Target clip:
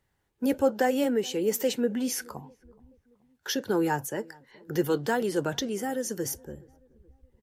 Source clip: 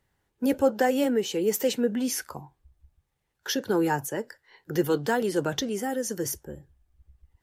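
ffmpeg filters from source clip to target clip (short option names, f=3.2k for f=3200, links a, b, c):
-filter_complex "[0:a]asplit=2[a][b];[b]adelay=425,lowpass=f=1.1k:p=1,volume=-24dB,asplit=2[c][d];[d]adelay=425,lowpass=f=1.1k:p=1,volume=0.51,asplit=2[e][f];[f]adelay=425,lowpass=f=1.1k:p=1,volume=0.51[g];[a][c][e][g]amix=inputs=4:normalize=0,volume=-1.5dB"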